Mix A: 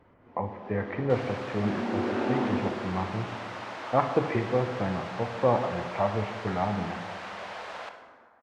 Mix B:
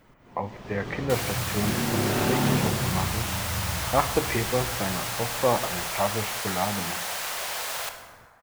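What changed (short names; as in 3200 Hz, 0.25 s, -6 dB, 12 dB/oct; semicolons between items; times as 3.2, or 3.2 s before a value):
speech: send -10.5 dB; first sound: remove steep high-pass 220 Hz 72 dB/oct; master: remove tape spacing loss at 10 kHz 35 dB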